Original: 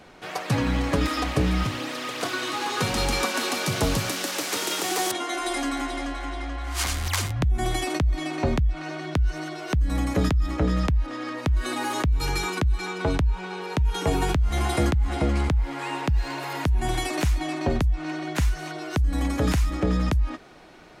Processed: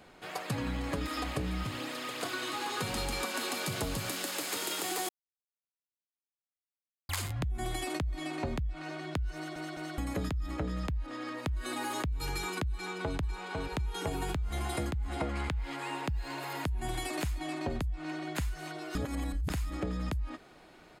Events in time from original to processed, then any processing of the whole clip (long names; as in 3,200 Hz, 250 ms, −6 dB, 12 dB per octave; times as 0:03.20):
0:05.09–0:07.09: silence
0:09.35: stutter in place 0.21 s, 3 plays
0:12.72–0:13.18: delay throw 500 ms, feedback 40%, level −5 dB
0:15.19–0:15.75: parametric band 960 Hz → 4,000 Hz +7.5 dB 2.7 octaves
0:18.95–0:19.50: reverse
whole clip: high-shelf EQ 8,500 Hz +5.5 dB; notch filter 5,800 Hz, Q 7.7; downward compressor, threshold −23 dBFS; level −7 dB